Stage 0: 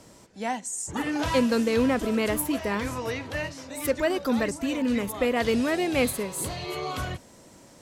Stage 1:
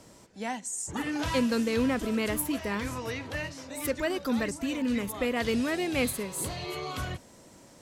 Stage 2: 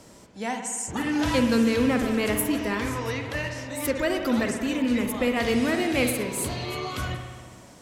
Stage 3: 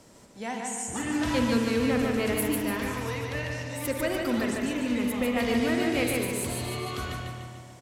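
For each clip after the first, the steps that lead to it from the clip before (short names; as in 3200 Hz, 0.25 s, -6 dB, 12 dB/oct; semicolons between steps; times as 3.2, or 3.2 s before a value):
dynamic EQ 640 Hz, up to -4 dB, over -35 dBFS, Q 0.79; gain -2 dB
spring tank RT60 1.6 s, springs 57 ms, chirp 75 ms, DRR 4.5 dB; gain +3.5 dB
feedback echo 0.147 s, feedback 47%, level -3.5 dB; gain -4.5 dB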